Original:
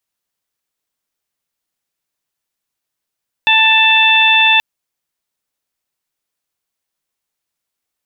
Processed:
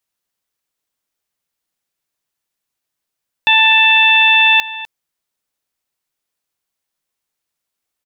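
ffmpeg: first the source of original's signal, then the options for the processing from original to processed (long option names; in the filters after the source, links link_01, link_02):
-f lavfi -i "aevalsrc='0.168*sin(2*PI*884*t)+0.15*sin(2*PI*1768*t)+0.316*sin(2*PI*2652*t)+0.211*sin(2*PI*3536*t)':duration=1.13:sample_rate=44100"
-filter_complex "[0:a]asplit=2[link_01][link_02];[link_02]adelay=250.7,volume=-15dB,highshelf=frequency=4000:gain=-5.64[link_03];[link_01][link_03]amix=inputs=2:normalize=0"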